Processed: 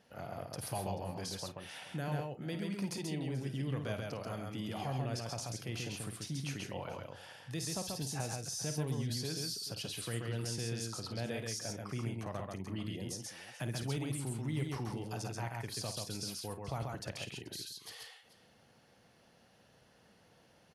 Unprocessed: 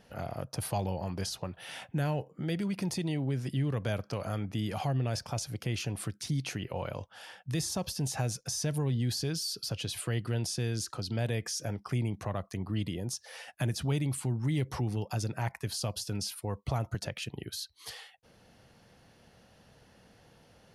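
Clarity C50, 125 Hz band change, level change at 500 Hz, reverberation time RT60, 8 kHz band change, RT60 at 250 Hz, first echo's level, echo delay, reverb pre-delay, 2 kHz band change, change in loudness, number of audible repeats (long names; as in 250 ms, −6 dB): no reverb audible, −7.0 dB, −4.5 dB, no reverb audible, −4.0 dB, no reverb audible, −10.0 dB, 52 ms, no reverb audible, −4.0 dB, −5.5 dB, 4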